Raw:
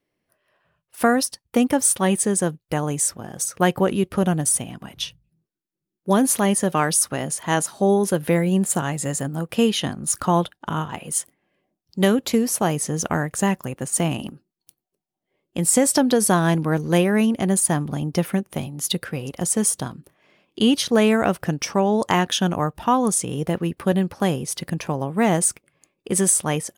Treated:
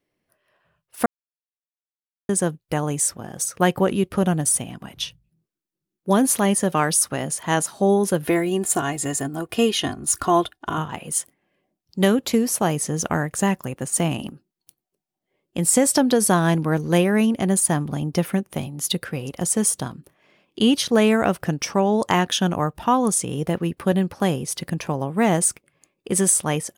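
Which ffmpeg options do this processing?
-filter_complex "[0:a]asettb=1/sr,asplit=3[s0][s1][s2];[s0]atrim=end=8.254[s3];[s1]atrim=start=8.25:end=10.78,asetpts=PTS-STARTPTS,afade=t=in:d=0.004:c=qsin,afade=t=out:st=2.526:d=0.004:c=qsin,aecho=1:1:2.8:0.65,atrim=end_sample=111573[s4];[s2]atrim=start=10.776[s5];[s3][s4]acrossfade=d=0.004:c1=hsin:c2=qsin[s6];[s6][s5]acrossfade=d=0.004:c1=qsin:c2=hsin,asplit=3[s7][s8][s9];[s7]atrim=end=1.06,asetpts=PTS-STARTPTS,afade=t=out:st=1.056:d=0.004:c=hsin[s10];[s8]atrim=start=1.06:end=2.29,asetpts=PTS-STARTPTS,volume=0[s11];[s9]atrim=start=2.29,asetpts=PTS-STARTPTS,afade=t=in:d=0.004:c=hsin[s12];[s10][s11][s12]concat=n=3:v=0:a=1"

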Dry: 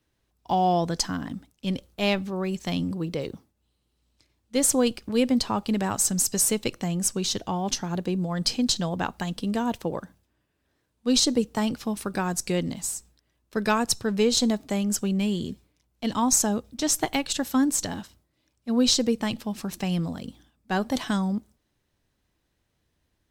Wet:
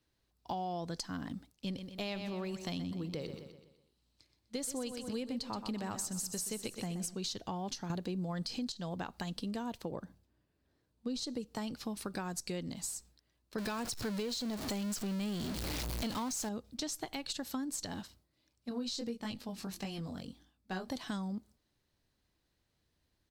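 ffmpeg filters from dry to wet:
-filter_complex "[0:a]asplit=3[s0][s1][s2];[s0]afade=t=out:st=1.74:d=0.02[s3];[s1]aecho=1:1:125|250|375|500|625:0.282|0.124|0.0546|0.024|0.0106,afade=t=in:st=1.74:d=0.02,afade=t=out:st=7.14:d=0.02[s4];[s2]afade=t=in:st=7.14:d=0.02[s5];[s3][s4][s5]amix=inputs=3:normalize=0,asettb=1/sr,asplit=3[s6][s7][s8];[s6]atrim=end=9.914[s9];[s7]atrim=start=9.91:end=11.24,asetpts=PTS-STARTPTS,afade=t=in:d=0.004:c=qsin,afade=t=out:st=1.326:d=0.004:c=qsin,tiltshelf=f=820:g=4[s10];[s8]atrim=start=11.236[s11];[s9][s10]acrossfade=d=0.004:c1=hsin:c2=qsin[s12];[s12][s11]acrossfade=d=0.004:c1=qsin:c2=hsin,asettb=1/sr,asplit=3[s13][s14][s15];[s13]atrim=end=13.584[s16];[s14]atrim=start=13.58:end=16.49,asetpts=PTS-STARTPTS,afade=t=in:d=0.004:c=qsin,afade=t=out:st=2.906:d=0.004:c=qsin,aeval=exprs='val(0)+0.5*0.0668*sgn(val(0))':c=same[s17];[s15]atrim=start=16.486[s18];[s16][s17]acrossfade=d=0.004:c1=hsin:c2=qsin[s19];[s19][s18]acrossfade=d=0.004:c1=qsin:c2=hsin,asettb=1/sr,asplit=3[s20][s21][s22];[s20]atrim=end=18.694[s23];[s21]atrim=start=18.69:end=20.88,asetpts=PTS-STARTPTS,afade=t=in:d=0.004:c=qsin,afade=t=out:st=2.186:d=0.004:c=qsin,flanger=delay=19.5:depth=2.4:speed=1.6[s24];[s22]atrim=start=20.876[s25];[s23][s24]acrossfade=d=0.004:c1=hsin:c2=qsin[s26];[s26][s25]acrossfade=d=0.004:c1=qsin:c2=hsin,asplit=3[s27][s28][s29];[s27]atrim=end=7.902[s30];[s28]atrim=start=7.898:end=8.722,asetpts=PTS-STARTPTS,volume=3.35[s31];[s29]atrim=start=8.718[s32];[s30][s31]acrossfade=d=0.004:c1=hsin:c2=hsin[s33];[s33][s32]acrossfade=d=0.004:c1=hsin:c2=hsin,equalizer=f=4400:w=3.5:g=6.5,alimiter=limit=0.178:level=0:latency=1:release=173,acompressor=threshold=0.0282:ratio=4,volume=0.531"

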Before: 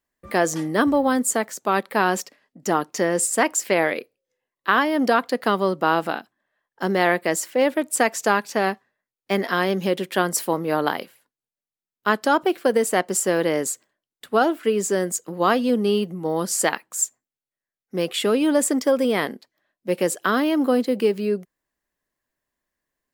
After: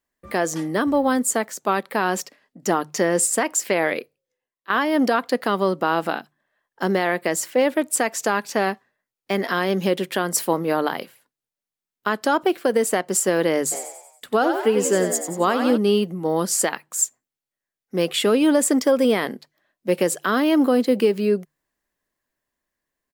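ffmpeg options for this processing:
-filter_complex "[0:a]asplit=3[s0][s1][s2];[s0]afade=t=out:st=13.71:d=0.02[s3];[s1]asplit=7[s4][s5][s6][s7][s8][s9][s10];[s5]adelay=92,afreqshift=55,volume=0.398[s11];[s6]adelay=184,afreqshift=110,volume=0.195[s12];[s7]adelay=276,afreqshift=165,volume=0.0955[s13];[s8]adelay=368,afreqshift=220,volume=0.0468[s14];[s9]adelay=460,afreqshift=275,volume=0.0229[s15];[s10]adelay=552,afreqshift=330,volume=0.0112[s16];[s4][s11][s12][s13][s14][s15][s16]amix=inputs=7:normalize=0,afade=t=in:st=13.71:d=0.02,afade=t=out:st=15.76:d=0.02[s17];[s2]afade=t=in:st=15.76:d=0.02[s18];[s3][s17][s18]amix=inputs=3:normalize=0,asplit=2[s19][s20];[s19]atrim=end=4.7,asetpts=PTS-STARTPTS,afade=t=out:st=3.93:d=0.77:silence=0.133352[s21];[s20]atrim=start=4.7,asetpts=PTS-STARTPTS,afade=t=in:d=0.004:c=hsin:silence=0.133352[s22];[s21][s22]concat=n=2:v=0:a=1,dynaudnorm=f=300:g=13:m=1.88,bandreject=f=50:t=h:w=6,bandreject=f=100:t=h:w=6,bandreject=f=150:t=h:w=6,alimiter=limit=0.376:level=0:latency=1:release=161"

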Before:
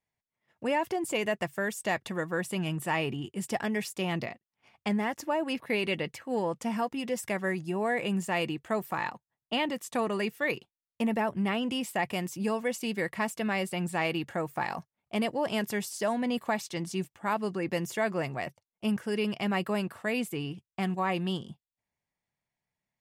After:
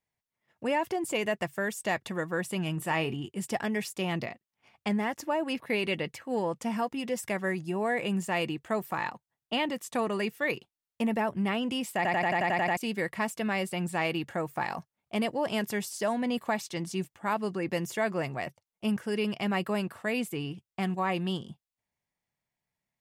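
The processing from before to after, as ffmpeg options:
-filter_complex "[0:a]asettb=1/sr,asplit=3[s0][s1][s2];[s0]atrim=end=2.744[s3];[s1]atrim=start=2.74:end=3.16,asetpts=PTS-STARTPTS,afade=t=in:d=0.004:c=qsin,afade=t=out:st=0.416:d=0.004:c=qsin,asplit=2[s4][s5];[s5]adelay=31,volume=0.224[s6];[s4][s6]amix=inputs=2:normalize=0,atrim=end_sample=18522[s7];[s2]atrim=start=3.156[s8];[s3][s7]acrossfade=d=0.004:c1=hsin:c2=qsin[s9];[s9][s8]acrossfade=d=0.004:c1=qsin:c2=hsin,asplit=10[s10][s11][s12][s13][s14][s15][s16][s17][s18][s19];[s10]atrim=end=12.052[s20];[s11]atrim=start=11.958:end=12.052[s21];[s12]atrim=start=11.958:end=12.052[s22];[s13]atrim=start=11.958:end=12.052[s23];[s14]atrim=start=11.958:end=12.052[s24];[s15]atrim=start=11.958:end=12.052[s25];[s16]atrim=start=11.958:end=12.052[s26];[s17]atrim=start=11.958:end=12.052[s27];[s18]atrim=start=11.958:end=12.052[s28];[s19]atrim=start=12.768[s29];[s20][s21]acrossfade=d=0.004:c1=hsin:c2=hsin[s30];[s30][s22]acrossfade=d=0.004:c1=hsin:c2=hsin[s31];[s31][s23]acrossfade=d=0.004:c1=hsin:c2=hsin[s32];[s32][s24]acrossfade=d=0.004:c1=hsin:c2=hsin[s33];[s33][s25]acrossfade=d=0.004:c1=hsin:c2=hsin[s34];[s34][s26]acrossfade=d=0.004:c1=hsin:c2=hsin[s35];[s35][s27]acrossfade=d=0.004:c1=hsin:c2=hsin[s36];[s36][s28]acrossfade=d=0.004:c1=hsin:c2=hsin[s37];[s37][s29]acrossfade=d=0.004:c1=hsin:c2=hsin"

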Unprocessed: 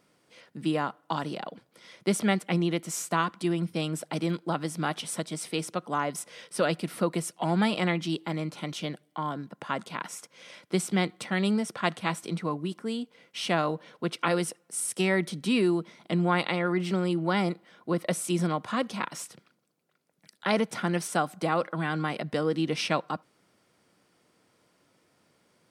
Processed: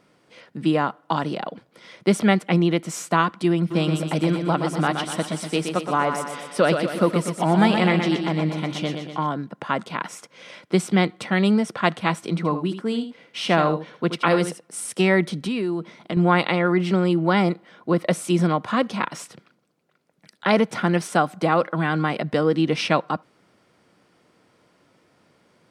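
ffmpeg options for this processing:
-filter_complex "[0:a]asplit=3[s0][s1][s2];[s0]afade=t=out:st=3.7:d=0.02[s3];[s1]aecho=1:1:122|244|366|488|610|732|854:0.473|0.26|0.143|0.0787|0.0433|0.0238|0.0131,afade=t=in:st=3.7:d=0.02,afade=t=out:st=9.26:d=0.02[s4];[s2]afade=t=in:st=9.26:d=0.02[s5];[s3][s4][s5]amix=inputs=3:normalize=0,asplit=3[s6][s7][s8];[s6]afade=t=out:st=12.36:d=0.02[s9];[s7]aecho=1:1:78:0.316,afade=t=in:st=12.36:d=0.02,afade=t=out:st=14.75:d=0.02[s10];[s8]afade=t=in:st=14.75:d=0.02[s11];[s9][s10][s11]amix=inputs=3:normalize=0,asettb=1/sr,asplit=3[s12][s13][s14];[s12]atrim=end=15.384[s15];[s13]atrim=start=15.38:end=16.17,asetpts=PTS-STARTPTS,afade=t=in:d=0.004:c=qsin,afade=t=out:st=0.786:d=0.004:c=qsin,acompressor=threshold=0.0316:ratio=4:attack=3.2:release=140:knee=1:detection=peak[s16];[s14]atrim=start=16.166[s17];[s15][s16]acrossfade=d=0.004:c1=hsin:c2=qsin[s18];[s18][s17]acrossfade=d=0.004:c1=qsin:c2=hsin,lowpass=f=3600:p=1,volume=2.37"

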